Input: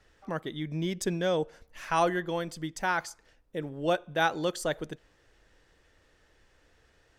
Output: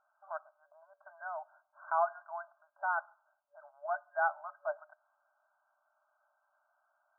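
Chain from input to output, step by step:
brick-wall band-pass 580–1,600 Hz
level −3.5 dB

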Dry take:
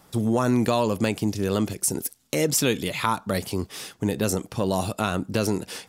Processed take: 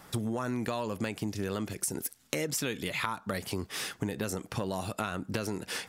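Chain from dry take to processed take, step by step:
parametric band 1,700 Hz +6 dB 1.2 octaves
downward compressor 6 to 1, threshold −31 dBFS, peak gain reduction 14.5 dB
level +1 dB

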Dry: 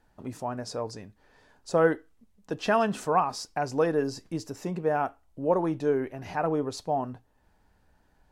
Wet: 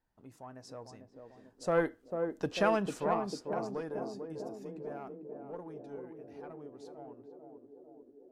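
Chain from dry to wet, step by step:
one-sided soft clipper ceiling −14 dBFS
source passing by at 0:02.28, 13 m/s, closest 4.4 metres
feedback echo with a band-pass in the loop 446 ms, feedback 79%, band-pass 350 Hz, level −4 dB

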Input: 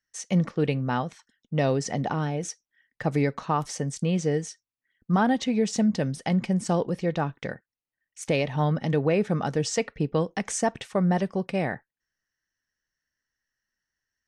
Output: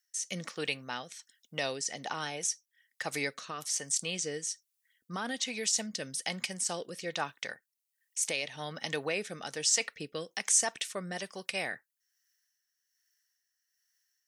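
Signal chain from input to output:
first difference
in parallel at −1 dB: compressor whose output falls as the input rises −43 dBFS, ratio −1
on the sum: rotating-speaker cabinet horn 1.2 Hz
level +6.5 dB

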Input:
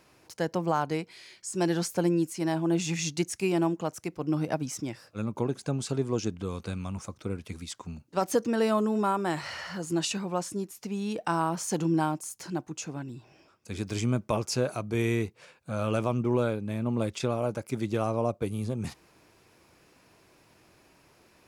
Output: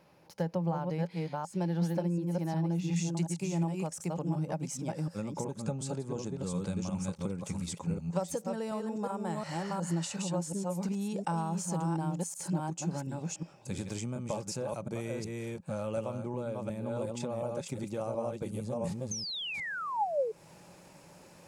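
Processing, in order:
delay that plays each chunk backwards 363 ms, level −3.5 dB
speech leveller within 4 dB 2 s
0:19.11–0:20.32: sound drawn into the spectrogram fall 420–6,500 Hz −26 dBFS
parametric band 7,900 Hz −8 dB 0.74 octaves, from 0:02.96 +8.5 dB
downward compressor, threshold −32 dBFS, peak gain reduction 12.5 dB
parametric band 170 Hz +14.5 dB 0.4 octaves
hollow resonant body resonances 560/830 Hz, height 11 dB, ringing for 35 ms
level −4.5 dB

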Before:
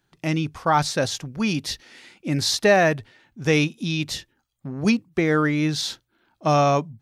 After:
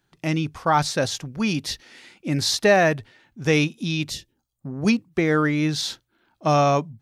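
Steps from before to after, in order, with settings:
0:04.09–0:04.82: parametric band 1,000 Hz → 3,700 Hz −14 dB 1.7 octaves

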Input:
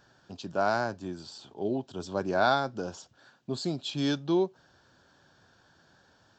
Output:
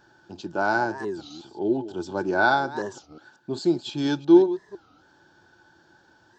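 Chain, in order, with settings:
delay that plays each chunk backwards 177 ms, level −14 dB
hollow resonant body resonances 340/860/1,500 Hz, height 14 dB, ringing for 70 ms
wow of a warped record 33 1/3 rpm, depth 250 cents

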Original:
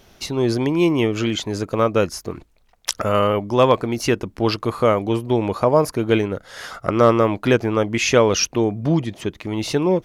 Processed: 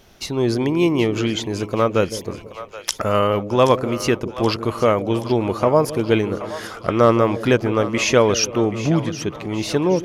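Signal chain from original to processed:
echo with a time of its own for lows and highs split 560 Hz, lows 163 ms, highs 776 ms, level −13 dB

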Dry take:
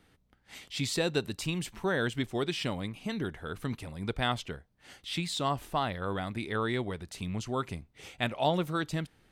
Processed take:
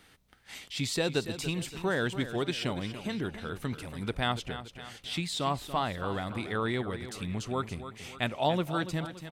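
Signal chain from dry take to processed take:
repeating echo 285 ms, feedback 45%, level −12 dB
one half of a high-frequency compander encoder only

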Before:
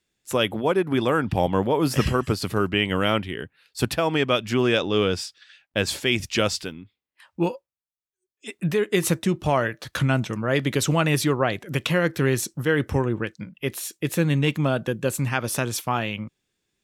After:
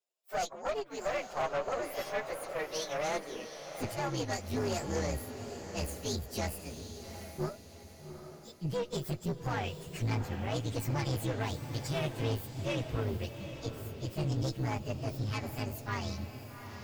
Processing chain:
partials spread apart or drawn together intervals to 127%
high-pass filter sweep 630 Hz → 67 Hz, 0:02.96–0:04.26
tube saturation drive 21 dB, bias 0.65
feedback delay with all-pass diffusion 790 ms, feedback 43%, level −9 dB
level −6.5 dB

